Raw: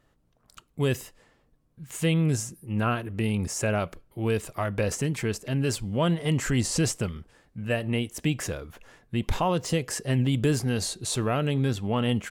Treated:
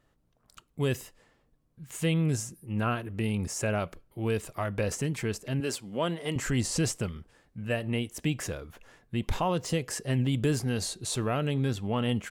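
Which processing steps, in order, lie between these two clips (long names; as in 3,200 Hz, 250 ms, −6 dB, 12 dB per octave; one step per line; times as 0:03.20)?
0:05.60–0:06.36: high-pass filter 240 Hz 12 dB per octave
level −3 dB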